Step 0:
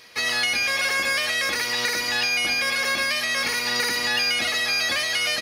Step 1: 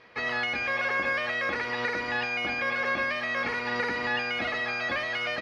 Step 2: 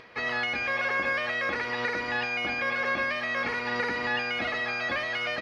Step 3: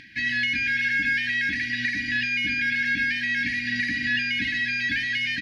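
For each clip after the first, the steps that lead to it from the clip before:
low-pass filter 1,700 Hz 12 dB per octave
upward compression, threshold −46 dBFS
linear-phase brick-wall band-stop 330–1,500 Hz; level +5.5 dB

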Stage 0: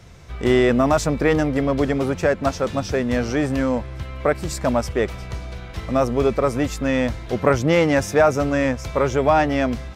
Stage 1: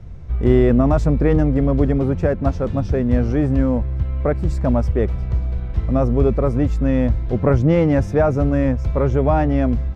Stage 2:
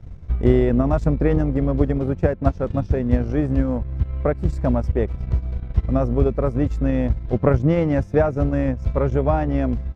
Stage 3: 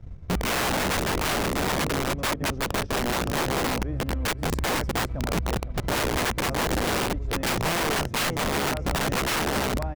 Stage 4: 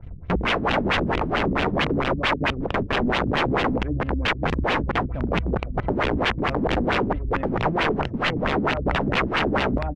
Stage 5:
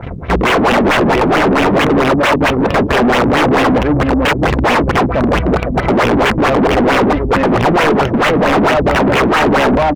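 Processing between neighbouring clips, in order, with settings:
spectral tilt −4 dB per octave; level −4.5 dB
transient designer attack +6 dB, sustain −10 dB; level −3.5 dB
repeating echo 510 ms, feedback 23%, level −11 dB; wrap-around overflow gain 17 dB; level −3 dB
auto-filter low-pass sine 4.5 Hz 220–3,200 Hz; level +2 dB
mid-hump overdrive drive 31 dB, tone 2,000 Hz, clips at −9.5 dBFS; level +5.5 dB

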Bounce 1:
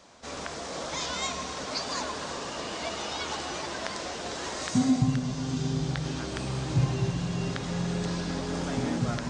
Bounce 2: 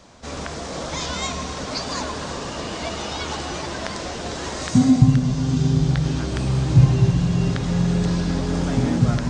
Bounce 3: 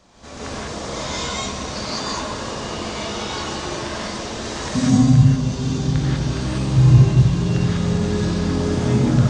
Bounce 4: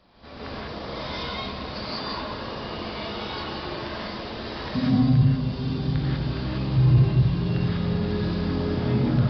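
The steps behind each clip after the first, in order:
low-shelf EQ 200 Hz +11.5 dB; level +4 dB
reverb whose tail is shaped and stops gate 220 ms rising, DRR −7.5 dB; level −6.5 dB
soft clipping −3.5 dBFS, distortion −23 dB; downsampling to 11,025 Hz; level −5 dB

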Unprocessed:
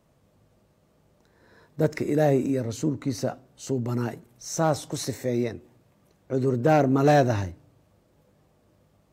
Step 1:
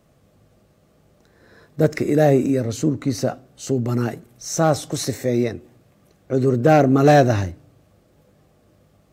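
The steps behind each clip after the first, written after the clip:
notch filter 940 Hz, Q 7.1
level +6 dB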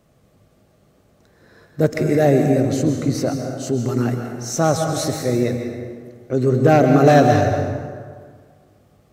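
dense smooth reverb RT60 1.8 s, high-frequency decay 0.6×, pre-delay 115 ms, DRR 4 dB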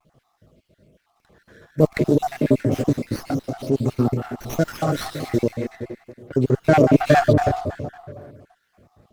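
time-frequency cells dropped at random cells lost 50%
pitch vibrato 0.33 Hz 20 cents
windowed peak hold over 5 samples
level +1.5 dB

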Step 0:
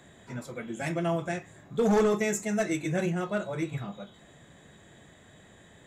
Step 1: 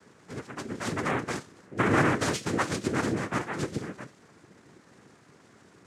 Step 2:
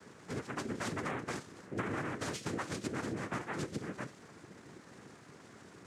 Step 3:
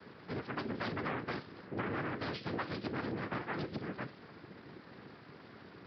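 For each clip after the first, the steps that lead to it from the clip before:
low-pass that shuts in the quiet parts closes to 1,900 Hz, open at −25.5 dBFS; cochlear-implant simulation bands 3
downward compressor 10 to 1, threshold −36 dBFS, peak gain reduction 18 dB; level +1.5 dB
downsampling to 11,025 Hz; saturating transformer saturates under 630 Hz; level +1.5 dB

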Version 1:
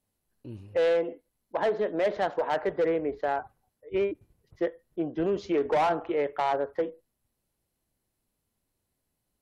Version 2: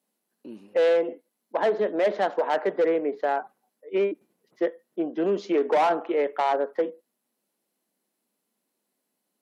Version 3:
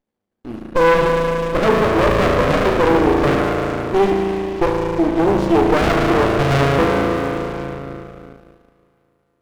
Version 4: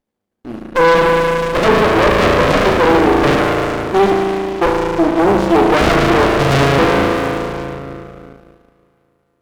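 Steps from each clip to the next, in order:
Chebyshev high-pass filter 200 Hz, order 4; level +3.5 dB
spring reverb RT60 3.5 s, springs 36 ms, chirp 55 ms, DRR −1.5 dB; leveller curve on the samples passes 2; windowed peak hold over 33 samples; level +3.5 dB
tube saturation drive 13 dB, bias 0.8; level +7.5 dB

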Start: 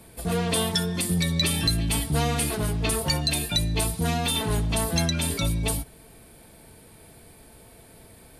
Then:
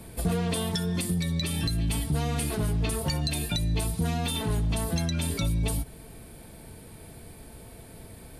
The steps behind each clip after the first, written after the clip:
downward compressor, threshold −28 dBFS, peak gain reduction 9.5 dB
low-shelf EQ 300 Hz +6 dB
speech leveller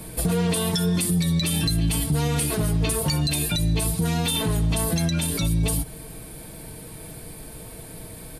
high-shelf EQ 6,600 Hz +6 dB
comb filter 6.4 ms, depth 38%
brickwall limiter −20 dBFS, peak gain reduction 6 dB
level +5.5 dB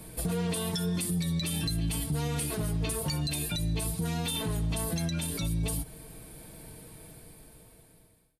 fade-out on the ending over 1.68 s
level −8 dB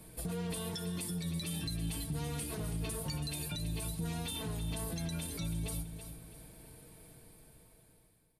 repeating echo 329 ms, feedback 32%, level −9.5 dB
level −7.5 dB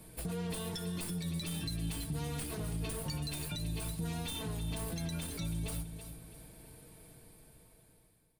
stylus tracing distortion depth 0.03 ms

